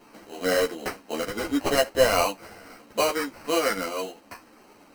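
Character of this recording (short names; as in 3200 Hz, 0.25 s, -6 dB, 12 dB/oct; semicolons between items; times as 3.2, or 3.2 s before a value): aliases and images of a low sample rate 3500 Hz, jitter 0%; a shimmering, thickened sound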